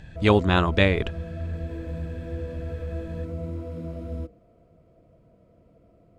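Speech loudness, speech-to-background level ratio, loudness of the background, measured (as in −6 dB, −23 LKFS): −22.0 LKFS, 12.0 dB, −34.0 LKFS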